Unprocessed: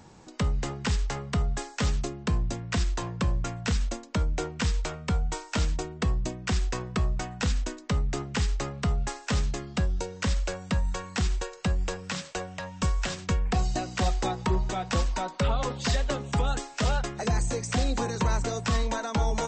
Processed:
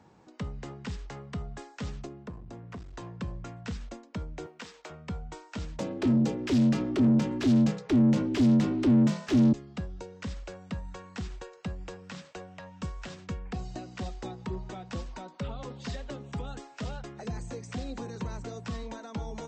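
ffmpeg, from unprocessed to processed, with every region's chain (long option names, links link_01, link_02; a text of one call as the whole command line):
ffmpeg -i in.wav -filter_complex "[0:a]asettb=1/sr,asplit=3[link_01][link_02][link_03];[link_01]atrim=end=2.064[link_04];[link_02]atrim=start=2.06:end=2.94,asetpts=PTS-STARTPTS,afade=type=in:duration=0.004:curve=qsin,afade=type=out:start_time=0.876:duration=0.004:curve=qsin,acrossover=split=1300|7100[link_05][link_06][link_07];[link_05]acompressor=threshold=-28dB:ratio=4[link_08];[link_06]acompressor=threshold=-49dB:ratio=4[link_09];[link_07]acompressor=threshold=-57dB:ratio=4[link_10];[link_08][link_09][link_10]amix=inputs=3:normalize=0,aeval=exprs='clip(val(0),-1,0.0211)':channel_layout=same[link_11];[link_03]atrim=start=2.936[link_12];[link_04][link_11]acrossfade=duration=0.004:curve1=hsin:curve2=qsin[link_13];[link_13][link_12]acrossfade=duration=0.004:curve1=qsin:curve2=hsin,asettb=1/sr,asplit=3[link_14][link_15][link_16];[link_14]atrim=end=4.464[link_17];[link_15]atrim=start=4.46:end=4.9,asetpts=PTS-STARTPTS,afade=type=in:duration=0.004:curve=qsin,afade=type=out:start_time=0.436:duration=0.004:curve=qsin,highpass=400,acrusher=bits=6:mode=log:mix=0:aa=0.000001[link_18];[link_16]atrim=start=4.896[link_19];[link_17][link_18]acrossfade=duration=0.004:curve1=hsin:curve2=qsin[link_20];[link_20][link_19]acrossfade=duration=0.004:curve1=qsin:curve2=hsin,asettb=1/sr,asplit=3[link_21][link_22][link_23];[link_21]atrim=end=5.794[link_24];[link_22]atrim=start=5.79:end=9.53,asetpts=PTS-STARTPTS,afade=type=in:duration=0.004:curve=qsin,afade=type=out:start_time=3.736:duration=0.004:curve=qsin,asubboost=boost=6:cutoff=110,aeval=exprs='val(0)*sin(2*PI*180*n/s)':channel_layout=same,asplit=2[link_25][link_26];[link_26]highpass=frequency=720:poles=1,volume=32dB,asoftclip=type=tanh:threshold=-7dB[link_27];[link_25][link_27]amix=inputs=2:normalize=0,lowpass=frequency=2400:poles=1,volume=-6dB[link_28];[link_23]atrim=start=9.526[link_29];[link_24][link_28]acrossfade=duration=0.004:curve1=hsin:curve2=qsin[link_30];[link_30][link_29]acrossfade=duration=0.004:curve1=qsin:curve2=hsin,highpass=frequency=120:poles=1,aemphasis=mode=reproduction:type=75kf,acrossover=split=420|3000[link_31][link_32][link_33];[link_32]acompressor=threshold=-39dB:ratio=6[link_34];[link_31][link_34][link_33]amix=inputs=3:normalize=0,volume=-5dB" out.wav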